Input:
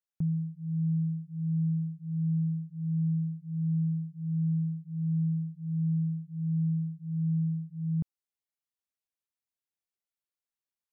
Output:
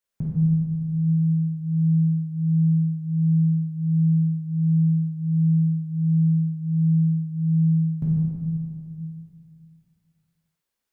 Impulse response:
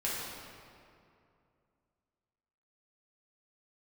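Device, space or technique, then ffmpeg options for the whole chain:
stairwell: -filter_complex "[1:a]atrim=start_sample=2205[s0];[0:a][s0]afir=irnorm=-1:irlink=0,volume=2.11"

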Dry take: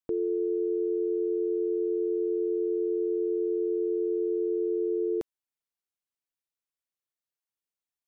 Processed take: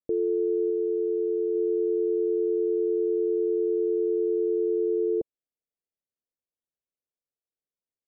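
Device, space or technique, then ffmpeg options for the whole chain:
under water: -filter_complex "[0:a]asettb=1/sr,asplit=3[s0][s1][s2];[s0]atrim=end=0.704[s3];[s1]atrim=start=0.7:end=1.55,asetpts=PTS-STARTPTS,afade=t=in:d=0.004:c=qsin,afade=t=out:st=0.846:d=0.004:c=qsin,equalizer=f=330:t=o:w=0.77:g=-2[s4];[s2]atrim=start=1.546[s5];[s3][s4]acrossfade=d=0.004:c1=hsin:c2=qsin[s6];[s6][s5]acrossfade=d=0.004:c1=qsin:c2=hsin,lowpass=f=650:w=0.5412,lowpass=f=650:w=1.3066,equalizer=f=500:t=o:w=0.77:g=5"

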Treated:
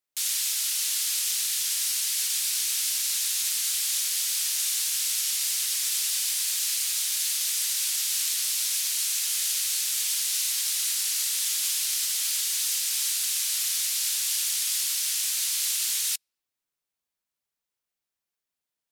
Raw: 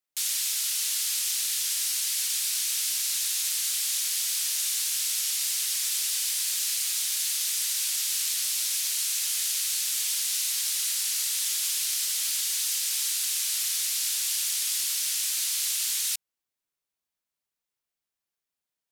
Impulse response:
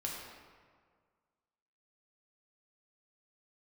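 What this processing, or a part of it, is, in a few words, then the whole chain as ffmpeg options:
keyed gated reverb: -filter_complex "[0:a]asplit=3[s0][s1][s2];[1:a]atrim=start_sample=2205[s3];[s1][s3]afir=irnorm=-1:irlink=0[s4];[s2]apad=whole_len=834001[s5];[s4][s5]sidechaingate=range=0.00562:threshold=0.0562:ratio=16:detection=peak,volume=0.841[s6];[s0][s6]amix=inputs=2:normalize=0"

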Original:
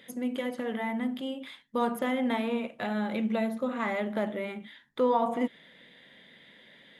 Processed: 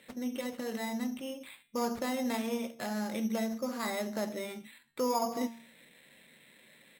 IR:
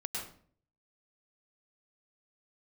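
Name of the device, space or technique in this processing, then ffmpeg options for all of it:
crushed at another speed: -filter_complex "[0:a]asplit=2[s0][s1];[s1]adelay=13,volume=0.282[s2];[s0][s2]amix=inputs=2:normalize=0,bandreject=f=230.5:t=h:w=4,bandreject=f=461:t=h:w=4,bandreject=f=691.5:t=h:w=4,bandreject=f=922:t=h:w=4,bandreject=f=1152.5:t=h:w=4,bandreject=f=1383:t=h:w=4,bandreject=f=1613.5:t=h:w=4,bandreject=f=1844:t=h:w=4,bandreject=f=2074.5:t=h:w=4,bandreject=f=2305:t=h:w=4,bandreject=f=2535.5:t=h:w=4,bandreject=f=2766:t=h:w=4,bandreject=f=2996.5:t=h:w=4,bandreject=f=3227:t=h:w=4,bandreject=f=3457.5:t=h:w=4,bandreject=f=3688:t=h:w=4,asetrate=55125,aresample=44100,acrusher=samples=6:mix=1:aa=0.000001,asetrate=35280,aresample=44100,volume=0.596"

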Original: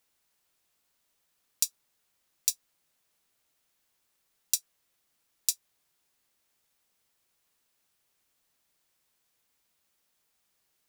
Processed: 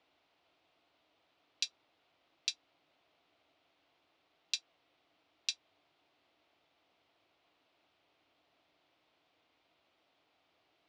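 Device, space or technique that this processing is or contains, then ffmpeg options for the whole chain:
guitar cabinet: -af "highpass=86,equalizer=f=130:t=q:w=4:g=-4,equalizer=f=210:t=q:w=4:g=-9,equalizer=f=300:t=q:w=4:g=8,equalizer=f=680:t=q:w=4:g=8,equalizer=f=1700:t=q:w=4:g=-6,lowpass=f=3700:w=0.5412,lowpass=f=3700:w=1.3066,volume=2.37"

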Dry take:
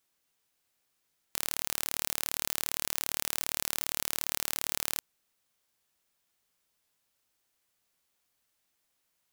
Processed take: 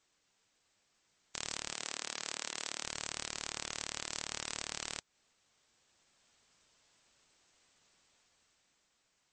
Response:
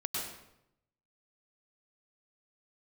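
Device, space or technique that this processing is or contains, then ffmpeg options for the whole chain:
low-bitrate web radio: -filter_complex "[0:a]asettb=1/sr,asplit=3[s0][s1][s2];[s0]atrim=end=1.754[s3];[s1]atrim=start=1.75:end=2.83,asetpts=PTS-STARTPTS,afade=t=in:d=0.004:c=qsin,afade=t=out:st=1.076:d=0.004:c=qsin,highpass=230[s4];[s2]atrim=start=2.826[s5];[s3][s4]acrossfade=d=0.004:c1=hsin:c2=qsin[s6];[s6][s5]acrossfade=d=0.004:c1=qsin:c2=hsin,dynaudnorm=f=100:g=21:m=2,alimiter=limit=0.266:level=0:latency=1:release=190,volume=1.68" -ar 22050 -c:a libmp3lame -b:a 32k

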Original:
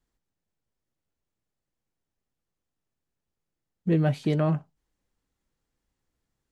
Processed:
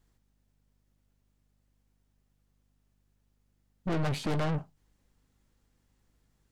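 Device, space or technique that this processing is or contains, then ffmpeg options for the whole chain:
valve amplifier with mains hum: -af "aeval=exprs='(tanh(70.8*val(0)+0.5)-tanh(0.5))/70.8':c=same,aeval=exprs='val(0)+0.0001*(sin(2*PI*50*n/s)+sin(2*PI*2*50*n/s)/2+sin(2*PI*3*50*n/s)/3+sin(2*PI*4*50*n/s)/4+sin(2*PI*5*50*n/s)/5)':c=same,volume=2.66"

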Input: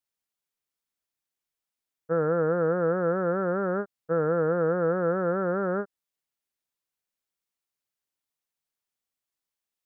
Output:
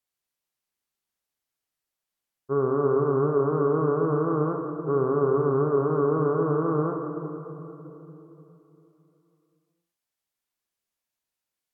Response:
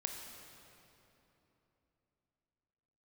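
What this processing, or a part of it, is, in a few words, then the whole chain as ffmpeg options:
slowed and reverbed: -filter_complex "[0:a]asetrate=37044,aresample=44100[s0];[1:a]atrim=start_sample=2205[s1];[s0][s1]afir=irnorm=-1:irlink=0,volume=1.26"

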